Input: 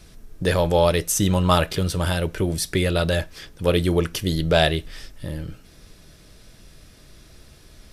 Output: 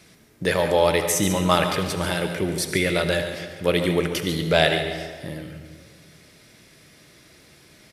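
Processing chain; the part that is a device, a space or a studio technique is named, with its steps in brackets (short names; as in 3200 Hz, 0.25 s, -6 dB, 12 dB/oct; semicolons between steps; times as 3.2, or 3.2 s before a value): PA in a hall (HPF 140 Hz 12 dB/oct; bell 2100 Hz +7.5 dB 0.39 oct; echo 0.142 s -11 dB; reverb RT60 1.6 s, pre-delay 63 ms, DRR 7.5 dB); gain -1 dB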